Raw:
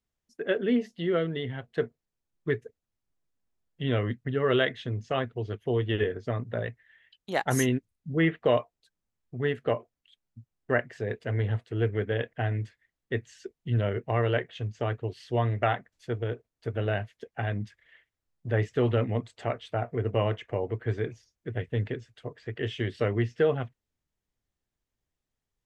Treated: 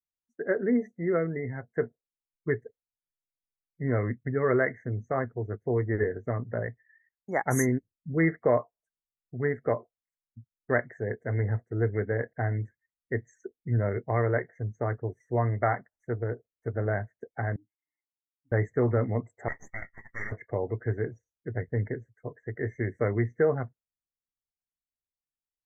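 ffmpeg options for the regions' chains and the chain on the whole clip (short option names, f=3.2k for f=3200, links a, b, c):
-filter_complex "[0:a]asettb=1/sr,asplit=3[a][b][c];[a]atrim=end=17.564[d];[b]atrim=start=17.56:end=18.52,asetpts=PTS-STARTPTS,afade=t=in:d=0.004:c=qsin,afade=t=out:st=0.956:d=0.004:c=qsin,aecho=1:1:7.3:0.95,atrim=end_sample=42336,acompressor=threshold=-48dB:ratio=4:attack=3.2:release=140:knee=1:detection=peak,asplit=3[e][f][g];[e]bandpass=f=300:t=q:w=8,volume=0dB[h];[f]bandpass=f=870:t=q:w=8,volume=-6dB[i];[g]bandpass=f=2.24k:t=q:w=8,volume=-9dB[j];[h][i][j]amix=inputs=3:normalize=0[k];[c]atrim=start=18.516[l];[d][k]acrossfade=d=0.004:c1=hsin:c2=qsin[m];[m][l]acrossfade=d=0.004:c1=qsin:c2=hsin,asettb=1/sr,asplit=3[n][o][p];[n]atrim=end=19.484[q];[o]atrim=start=19.48:end=20.32,asetpts=PTS-STARTPTS,afade=t=in:d=0.004:c=qsin,afade=t=out:st=0.836:d=0.004:c=qsin,highpass=f=870:w=0.5412,highpass=f=870:w=1.3066,aeval=exprs='abs(val(0))':c=same,equalizer=f=1.9k:w=6.6:g=14[r];[p]atrim=start=20.316[s];[q][r]acrossfade=d=0.004:c1=hsin:c2=qsin[t];[t][s]acrossfade=d=0.004:c1=qsin:c2=hsin,afftfilt=real='re*(1-between(b*sr/4096,2200,5700))':imag='im*(1-between(b*sr/4096,2200,5700))':win_size=4096:overlap=0.75,afftdn=nr=20:nf=-50"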